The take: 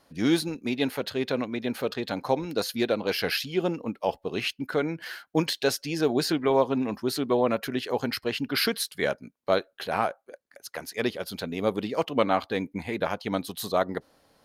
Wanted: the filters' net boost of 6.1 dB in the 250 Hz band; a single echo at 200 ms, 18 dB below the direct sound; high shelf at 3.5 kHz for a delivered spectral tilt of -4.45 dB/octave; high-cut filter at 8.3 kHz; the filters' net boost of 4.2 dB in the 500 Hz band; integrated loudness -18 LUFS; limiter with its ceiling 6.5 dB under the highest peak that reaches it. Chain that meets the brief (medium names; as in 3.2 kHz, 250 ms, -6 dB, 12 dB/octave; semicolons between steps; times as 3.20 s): low-pass 8.3 kHz; peaking EQ 250 Hz +6.5 dB; peaking EQ 500 Hz +3 dB; treble shelf 3.5 kHz +8 dB; peak limiter -11.5 dBFS; delay 200 ms -18 dB; trim +7 dB